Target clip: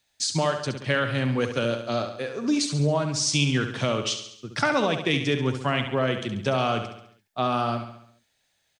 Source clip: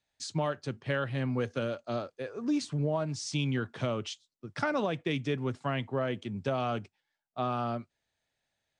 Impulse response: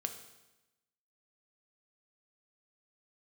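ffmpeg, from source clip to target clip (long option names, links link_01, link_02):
-filter_complex "[0:a]highshelf=frequency=2300:gain=9,asplit=2[link_01][link_02];[link_02]aecho=0:1:69|138|207|276|345|414:0.376|0.199|0.106|0.056|0.0297|0.0157[link_03];[link_01][link_03]amix=inputs=2:normalize=0,volume=5.5dB"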